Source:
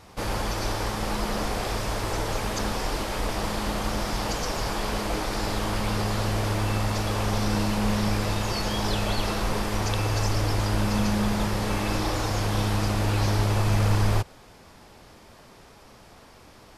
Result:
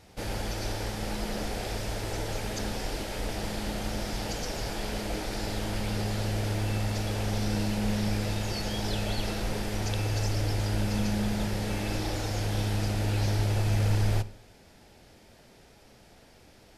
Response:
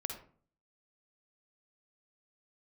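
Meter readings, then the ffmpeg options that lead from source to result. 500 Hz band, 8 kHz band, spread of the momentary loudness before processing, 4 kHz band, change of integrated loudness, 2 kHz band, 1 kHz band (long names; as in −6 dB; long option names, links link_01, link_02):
−5.0 dB, −4.5 dB, 5 LU, −4.5 dB, −4.0 dB, −5.5 dB, −8.5 dB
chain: -filter_complex "[0:a]equalizer=frequency=1100:width_type=o:width=0.45:gain=-11.5,asplit=2[link_01][link_02];[1:a]atrim=start_sample=2205[link_03];[link_02][link_03]afir=irnorm=-1:irlink=0,volume=-9.5dB[link_04];[link_01][link_04]amix=inputs=2:normalize=0,volume=-6.5dB"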